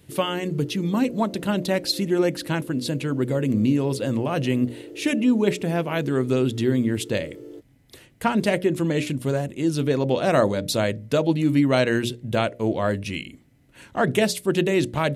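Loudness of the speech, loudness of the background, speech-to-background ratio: −23.5 LKFS, −41.0 LKFS, 17.5 dB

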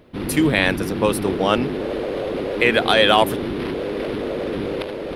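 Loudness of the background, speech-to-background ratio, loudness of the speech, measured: −26.0 LKFS, 7.0 dB, −19.0 LKFS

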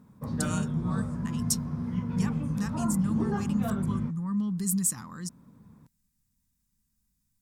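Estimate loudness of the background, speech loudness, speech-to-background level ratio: −32.0 LKFS, −32.0 LKFS, 0.0 dB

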